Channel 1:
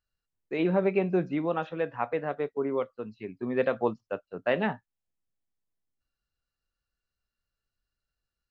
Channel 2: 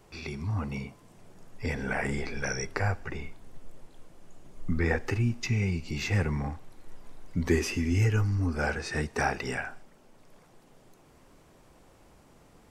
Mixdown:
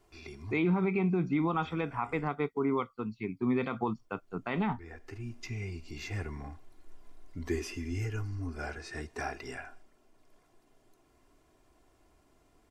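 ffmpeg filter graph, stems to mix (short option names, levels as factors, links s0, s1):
-filter_complex "[0:a]aecho=1:1:0.9:0.84,alimiter=limit=0.15:level=0:latency=1:release=191,volume=1.19,asplit=2[s0][s1];[1:a]aecho=1:1:2.9:0.56,volume=0.316,asplit=3[s2][s3][s4];[s2]atrim=end=2.28,asetpts=PTS-STARTPTS,afade=t=out:st=2.276:d=0.004:c=hsin[s5];[s3]atrim=start=2.28:end=3.88,asetpts=PTS-STARTPTS,volume=0[s6];[s4]atrim=start=3.88,asetpts=PTS-STARTPTS,afade=t=in:d=0.004:c=hsin[s7];[s5][s6][s7]concat=n=3:v=0:a=1[s8];[s1]apad=whole_len=560594[s9];[s8][s9]sidechaincompress=threshold=0.0141:ratio=8:attack=9:release=615[s10];[s0][s10]amix=inputs=2:normalize=0,alimiter=limit=0.0944:level=0:latency=1:release=42"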